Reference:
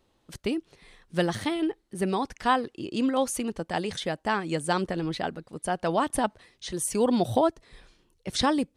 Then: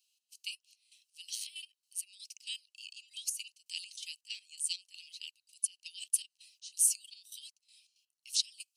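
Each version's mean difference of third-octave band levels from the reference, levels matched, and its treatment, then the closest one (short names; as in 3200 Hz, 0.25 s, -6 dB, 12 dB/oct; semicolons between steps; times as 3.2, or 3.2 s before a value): 20.0 dB: in parallel at +2 dB: vocal rider within 5 dB 0.5 s; on the sum: steep high-pass 2700 Hz 72 dB/oct; bell 3500 Hz -14.5 dB 0.25 oct; step gate "xx..xx.x.." 164 bpm -12 dB; gain -2.5 dB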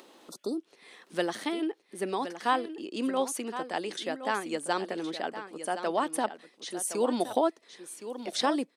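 5.0 dB: HPF 250 Hz 24 dB/oct; spectral repair 0.3–0.58, 1400–3500 Hz; upward compressor, threshold -37 dBFS; echo 1.067 s -11 dB; gain -3 dB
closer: second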